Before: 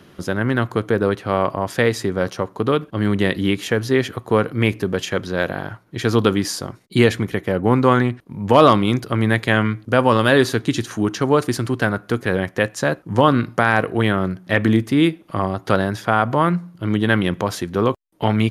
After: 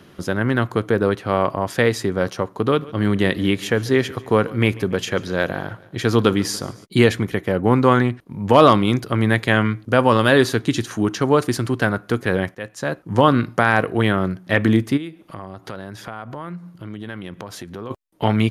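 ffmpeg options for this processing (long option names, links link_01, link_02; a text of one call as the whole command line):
ffmpeg -i in.wav -filter_complex "[0:a]asplit=3[link_01][link_02][link_03];[link_01]afade=type=out:start_time=2.76:duration=0.02[link_04];[link_02]aecho=1:1:142|284|426|568:0.0891|0.049|0.027|0.0148,afade=type=in:start_time=2.76:duration=0.02,afade=type=out:start_time=6.84:duration=0.02[link_05];[link_03]afade=type=in:start_time=6.84:duration=0.02[link_06];[link_04][link_05][link_06]amix=inputs=3:normalize=0,asplit=3[link_07][link_08][link_09];[link_07]afade=type=out:start_time=14.96:duration=0.02[link_10];[link_08]acompressor=threshold=-33dB:ratio=3:attack=3.2:release=140:knee=1:detection=peak,afade=type=in:start_time=14.96:duration=0.02,afade=type=out:start_time=17.9:duration=0.02[link_11];[link_09]afade=type=in:start_time=17.9:duration=0.02[link_12];[link_10][link_11][link_12]amix=inputs=3:normalize=0,asplit=2[link_13][link_14];[link_13]atrim=end=12.55,asetpts=PTS-STARTPTS,afade=type=out:start_time=12.546:duration=0.004:curve=hsin:silence=0.141254[link_15];[link_14]atrim=start=12.55,asetpts=PTS-STARTPTS,afade=type=in:duration=0.61:silence=0.141254[link_16];[link_15][link_16]concat=n=2:v=0:a=1" out.wav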